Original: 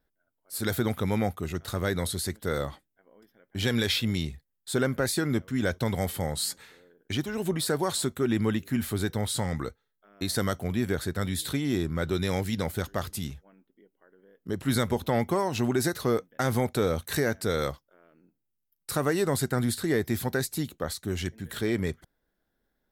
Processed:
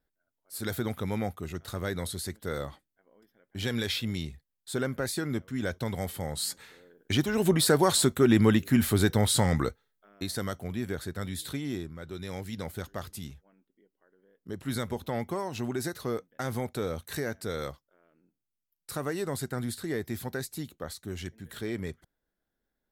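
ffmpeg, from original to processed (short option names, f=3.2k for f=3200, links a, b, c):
-af "volume=12.5dB,afade=t=in:st=6.24:d=1.21:silence=0.334965,afade=t=out:st=9.63:d=0.69:silence=0.298538,afade=t=out:st=11.67:d=0.3:silence=0.375837,afade=t=in:st=11.97:d=0.74:silence=0.421697"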